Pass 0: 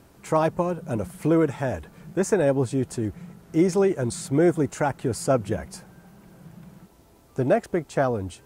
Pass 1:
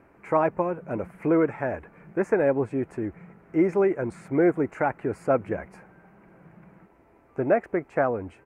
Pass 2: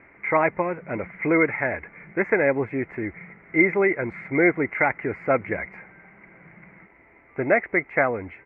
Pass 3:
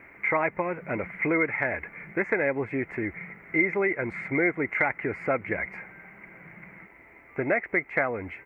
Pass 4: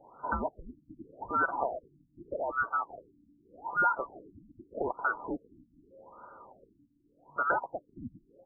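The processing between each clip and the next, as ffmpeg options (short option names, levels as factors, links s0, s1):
-af "firequalizer=gain_entry='entry(130,0);entry(310,7);entry(2300,10);entry(3400,-14)':delay=0.05:min_phase=1,volume=0.398"
-af "lowpass=f=2100:t=q:w=12"
-af "acompressor=threshold=0.0447:ratio=2,crystalizer=i=3:c=0"
-af "afftfilt=real='real(if(lt(b,960),b+48*(1-2*mod(floor(b/48),2)),b),0)':imag='imag(if(lt(b,960),b+48*(1-2*mod(floor(b/48),2)),b),0)':win_size=2048:overlap=0.75,lowshelf=f=170:g=-8,afftfilt=real='re*lt(b*sr/1024,300*pow(1600/300,0.5+0.5*sin(2*PI*0.83*pts/sr)))':imag='im*lt(b*sr/1024,300*pow(1600/300,0.5+0.5*sin(2*PI*0.83*pts/sr)))':win_size=1024:overlap=0.75"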